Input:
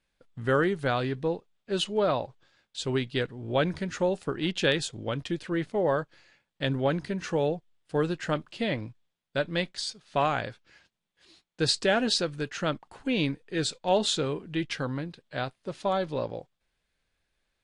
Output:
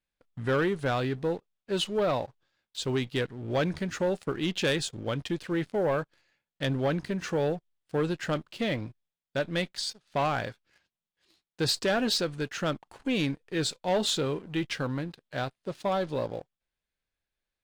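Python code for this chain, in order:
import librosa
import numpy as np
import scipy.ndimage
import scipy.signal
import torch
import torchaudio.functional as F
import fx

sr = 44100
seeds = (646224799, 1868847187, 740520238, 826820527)

y = fx.leveller(x, sr, passes=2)
y = y * 10.0 ** (-7.0 / 20.0)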